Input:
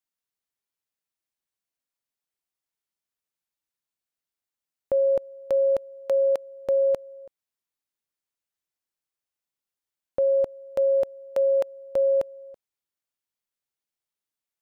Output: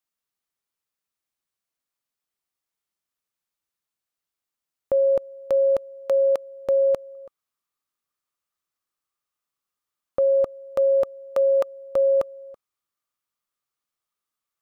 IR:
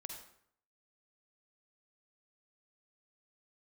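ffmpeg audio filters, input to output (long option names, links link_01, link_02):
-af "asetnsamples=nb_out_samples=441:pad=0,asendcmd='7.15 equalizer g 13.5',equalizer=frequency=1200:width=5.4:gain=5,volume=2dB"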